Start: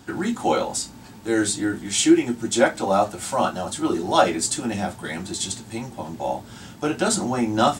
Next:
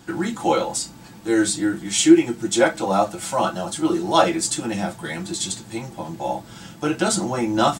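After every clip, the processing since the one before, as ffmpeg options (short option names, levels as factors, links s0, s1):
-af "aecho=1:1:6:0.51"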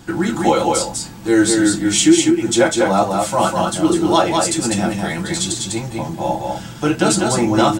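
-filter_complex "[0:a]lowshelf=f=83:g=10,alimiter=limit=0.422:level=0:latency=1:release=472,asplit=2[s0][s1];[s1]aecho=0:1:199:0.668[s2];[s0][s2]amix=inputs=2:normalize=0,volume=1.68"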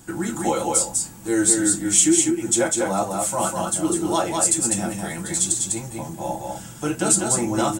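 -af "highshelf=f=6000:t=q:w=1.5:g=9.5,volume=0.422"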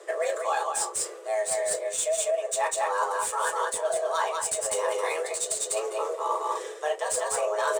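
-af "areverse,acompressor=threshold=0.0501:ratio=8,areverse,afreqshift=310,adynamicsmooth=sensitivity=6.5:basefreq=5000,volume=1.41"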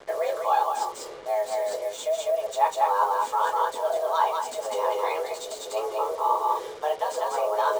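-af "highpass=f=230:w=0.5412,highpass=f=230:w=1.3066,equalizer=f=260:t=q:w=4:g=9,equalizer=f=880:t=q:w=4:g=9,equalizer=f=1800:t=q:w=4:g=-7,equalizer=f=5300:t=q:w=4:g=-4,lowpass=f=5600:w=0.5412,lowpass=f=5600:w=1.3066,acrusher=bits=6:mix=0:aa=0.5,bandreject=f=2600:w=13"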